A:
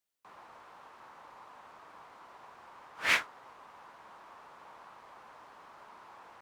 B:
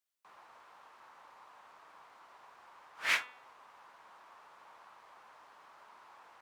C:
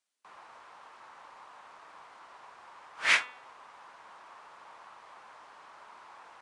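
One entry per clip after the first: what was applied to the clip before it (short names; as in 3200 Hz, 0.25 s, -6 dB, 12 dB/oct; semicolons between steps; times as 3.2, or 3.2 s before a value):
low shelf 480 Hz -9.5 dB; de-hum 249 Hz, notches 17; gain -2.5 dB
gain +5.5 dB; Vorbis 64 kbps 22050 Hz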